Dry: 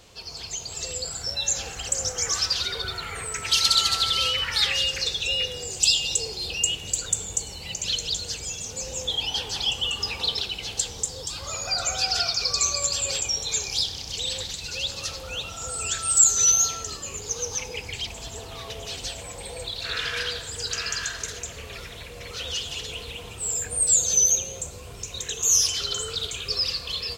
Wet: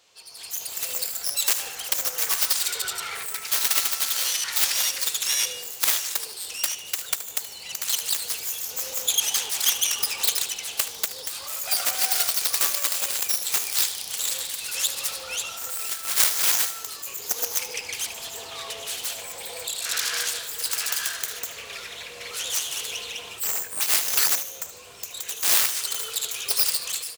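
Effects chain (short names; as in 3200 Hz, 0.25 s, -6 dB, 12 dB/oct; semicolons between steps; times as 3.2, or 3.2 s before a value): self-modulated delay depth 0.78 ms; HPF 1000 Hz 6 dB/oct; AGC gain up to 11.5 dB; feedback echo 75 ms, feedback 43%, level -14 dB; gain -6 dB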